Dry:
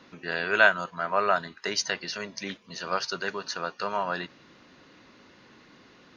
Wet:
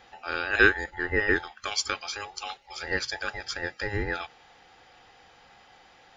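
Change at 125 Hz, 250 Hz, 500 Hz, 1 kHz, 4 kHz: +6.0, +3.5, -2.0, -6.5, -0.5 dB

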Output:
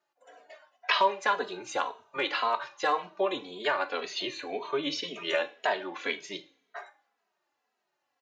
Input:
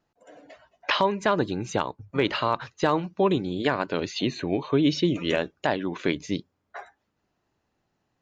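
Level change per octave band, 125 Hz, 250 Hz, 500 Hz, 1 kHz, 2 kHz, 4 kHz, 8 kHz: -24.5 dB, -15.0 dB, -5.5 dB, -1.0 dB, -0.5 dB, -1.5 dB, n/a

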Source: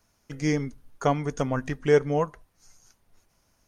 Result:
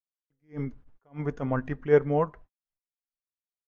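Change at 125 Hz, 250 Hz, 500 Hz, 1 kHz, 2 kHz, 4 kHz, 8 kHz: -3.0 dB, -4.0 dB, -1.5 dB, -4.5 dB, -4.5 dB, under -15 dB, under -25 dB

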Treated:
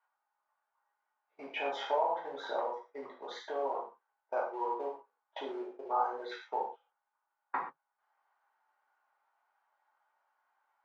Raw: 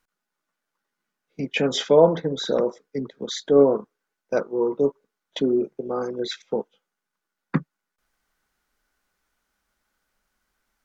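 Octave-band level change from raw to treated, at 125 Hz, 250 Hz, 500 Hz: under -40 dB, -23.5 dB, -16.5 dB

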